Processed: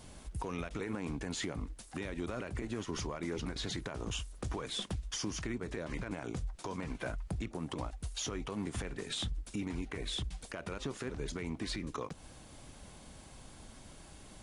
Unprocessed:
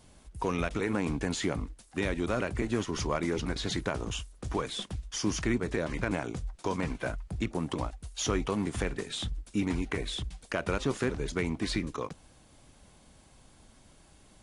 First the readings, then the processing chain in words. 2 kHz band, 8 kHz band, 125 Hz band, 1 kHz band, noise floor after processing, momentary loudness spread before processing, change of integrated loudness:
−8.0 dB, −4.0 dB, −6.0 dB, −8.0 dB, −54 dBFS, 7 LU, −7.0 dB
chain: downward compressor, threshold −39 dBFS, peak gain reduction 14.5 dB
brickwall limiter −32.5 dBFS, peak gain reduction 9.5 dB
level +5 dB

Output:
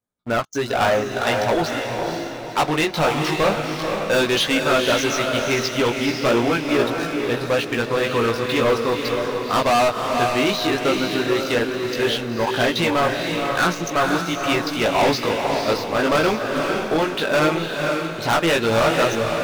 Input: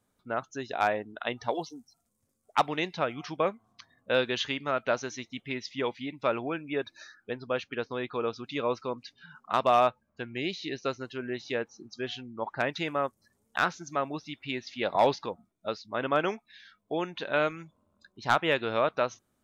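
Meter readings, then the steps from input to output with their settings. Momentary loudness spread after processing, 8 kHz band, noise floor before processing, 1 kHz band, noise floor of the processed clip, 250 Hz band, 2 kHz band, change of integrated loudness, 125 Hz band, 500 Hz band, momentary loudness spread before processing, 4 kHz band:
5 LU, can't be measured, −76 dBFS, +9.0 dB, −30 dBFS, +14.0 dB, +11.5 dB, +10.5 dB, +14.5 dB, +11.0 dB, 12 LU, +13.5 dB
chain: chorus effect 0.15 Hz, delay 17 ms, depth 2.2 ms
leveller curve on the samples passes 5
feedback delay with all-pass diffusion 496 ms, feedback 42%, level −3.5 dB

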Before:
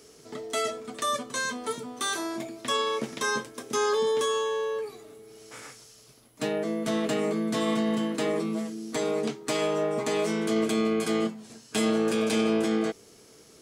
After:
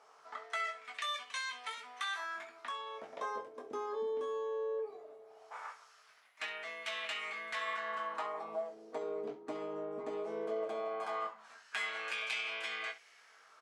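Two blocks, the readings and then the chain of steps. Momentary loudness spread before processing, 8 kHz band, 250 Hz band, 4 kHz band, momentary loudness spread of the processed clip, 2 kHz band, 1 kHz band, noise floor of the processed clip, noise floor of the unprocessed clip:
10 LU, −19.0 dB, −25.0 dB, −9.5 dB, 9 LU, −5.0 dB, −7.5 dB, −63 dBFS, −54 dBFS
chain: auto-filter band-pass sine 0.18 Hz 320–2,500 Hz
low shelf with overshoot 510 Hz −11 dB, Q 1.5
downward compressor 2 to 1, threshold −43 dBFS, peak gain reduction 8.5 dB
on a send: ambience of single reflections 20 ms −7 dB, 66 ms −14.5 dB
on the sum: gain on a spectral selection 0:02.25–0:03.13, 440–1,200 Hz −7 dB
level +4.5 dB

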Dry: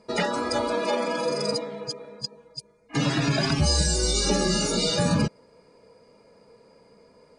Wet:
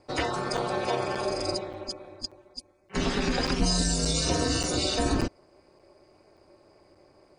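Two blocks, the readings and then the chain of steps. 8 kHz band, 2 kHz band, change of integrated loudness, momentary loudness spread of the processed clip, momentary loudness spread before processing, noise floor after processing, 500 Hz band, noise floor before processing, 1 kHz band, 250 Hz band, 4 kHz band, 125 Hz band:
−3.0 dB, −3.0 dB, −3.0 dB, 13 LU, 13 LU, −61 dBFS, −3.5 dB, −58 dBFS, −1.5 dB, −3.0 dB, −3.0 dB, −5.5 dB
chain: ring modulation 110 Hz
regular buffer underruns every 0.58 s, samples 256, zero, from 0:00.57

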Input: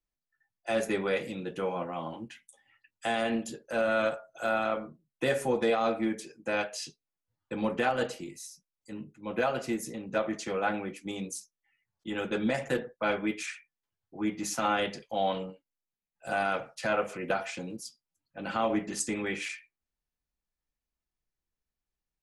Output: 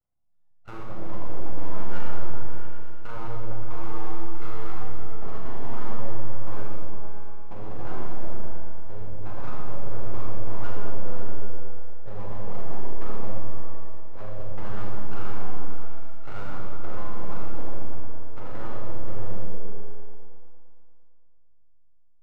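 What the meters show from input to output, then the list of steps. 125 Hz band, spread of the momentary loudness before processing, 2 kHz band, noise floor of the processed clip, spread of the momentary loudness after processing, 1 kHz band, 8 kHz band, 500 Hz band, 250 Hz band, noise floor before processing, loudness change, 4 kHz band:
+11.0 dB, 15 LU, −12.5 dB, −49 dBFS, 8 LU, −6.0 dB, below −20 dB, −9.0 dB, −7.0 dB, below −85 dBFS, −8.0 dB, −14.5 dB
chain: gap after every zero crossing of 0.23 ms
treble cut that deepens with the level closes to 600 Hz, closed at −30 dBFS
parametric band 100 Hz +9 dB 0.78 octaves
brickwall limiter −26 dBFS, peak gain reduction 8 dB
downward compressor, threshold −36 dBFS, peak gain reduction 6.5 dB
Savitzky-Golay smoothing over 65 samples
notch filter 410 Hz, Q 12
tuned comb filter 710 Hz, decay 0.3 s, mix 80%
full-wave rectification
on a send: echo whose low-pass opens from repeat to repeat 114 ms, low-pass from 200 Hz, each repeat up 1 octave, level 0 dB
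on the sum: four-comb reverb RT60 1.7 s, combs from 30 ms, DRR −2 dB
level +14.5 dB

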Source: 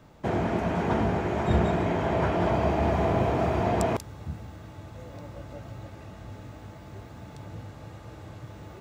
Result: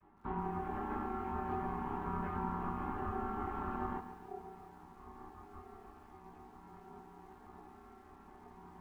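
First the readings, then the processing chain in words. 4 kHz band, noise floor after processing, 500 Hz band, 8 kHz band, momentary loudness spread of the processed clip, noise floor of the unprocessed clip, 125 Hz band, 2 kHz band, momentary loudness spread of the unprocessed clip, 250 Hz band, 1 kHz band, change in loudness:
below −20 dB, −58 dBFS, −17.5 dB, below −20 dB, 18 LU, −46 dBFS, −17.5 dB, −14.5 dB, 19 LU, −13.5 dB, −9.0 dB, −14.0 dB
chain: channel vocoder with a chord as carrier major triad, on C3
high-pass filter 220 Hz 24 dB per octave
multi-voice chorus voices 4, 0.27 Hz, delay 23 ms, depth 4 ms
downward compressor 3 to 1, threshold −35 dBFS, peak gain reduction 7.5 dB
ring modulation 570 Hz
high-frequency loss of the air 430 metres
feedback echo at a low word length 141 ms, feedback 55%, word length 11 bits, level −11 dB
level +2.5 dB

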